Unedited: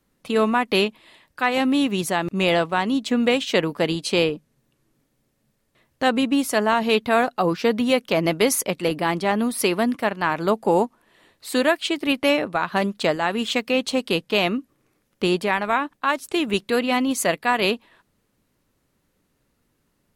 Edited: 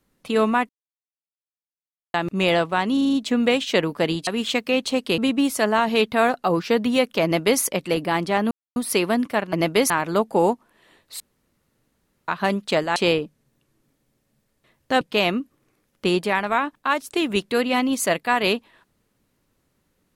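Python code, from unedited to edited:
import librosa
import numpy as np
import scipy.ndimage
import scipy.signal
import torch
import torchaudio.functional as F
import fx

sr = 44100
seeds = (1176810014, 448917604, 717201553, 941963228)

y = fx.edit(x, sr, fx.silence(start_s=0.69, length_s=1.45),
    fx.stutter(start_s=2.93, slice_s=0.04, count=6),
    fx.swap(start_s=4.07, length_s=2.05, other_s=13.28, other_length_s=0.91),
    fx.duplicate(start_s=8.18, length_s=0.37, to_s=10.22),
    fx.insert_silence(at_s=9.45, length_s=0.25),
    fx.room_tone_fill(start_s=11.52, length_s=1.08), tone=tone)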